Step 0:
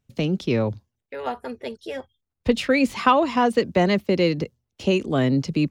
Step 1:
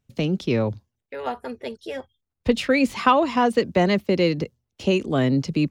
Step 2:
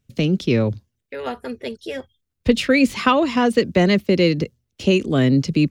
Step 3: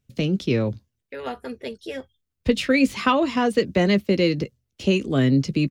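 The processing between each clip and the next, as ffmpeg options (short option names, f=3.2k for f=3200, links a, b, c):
-af anull
-af "equalizer=f=860:t=o:w=1.1:g=-8,volume=5dB"
-filter_complex "[0:a]asplit=2[a][b];[b]adelay=15,volume=-12.5dB[c];[a][c]amix=inputs=2:normalize=0,volume=-3.5dB"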